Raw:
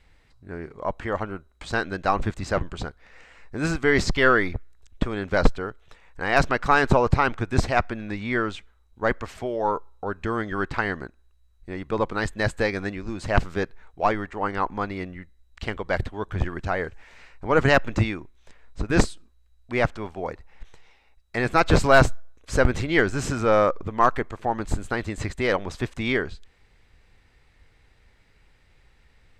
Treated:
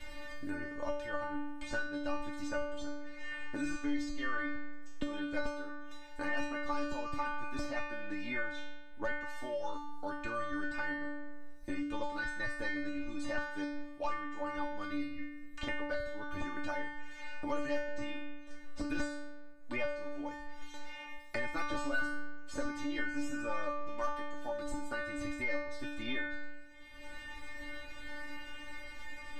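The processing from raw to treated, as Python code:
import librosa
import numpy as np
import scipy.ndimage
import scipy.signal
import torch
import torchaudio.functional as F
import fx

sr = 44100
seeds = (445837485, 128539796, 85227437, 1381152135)

y = fx.stiff_resonator(x, sr, f0_hz=290.0, decay_s=0.78, stiffness=0.002)
y = fx.band_squash(y, sr, depth_pct=100)
y = y * librosa.db_to_amplitude(5.5)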